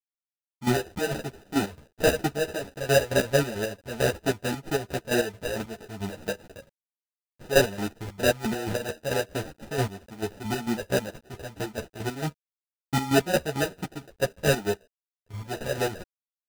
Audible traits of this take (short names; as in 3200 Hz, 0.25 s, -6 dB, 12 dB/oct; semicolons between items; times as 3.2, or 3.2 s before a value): a quantiser's noise floor 10-bit, dither none; chopped level 4.5 Hz, depth 65%, duty 40%; aliases and images of a low sample rate 1100 Hz, jitter 0%; a shimmering, thickened sound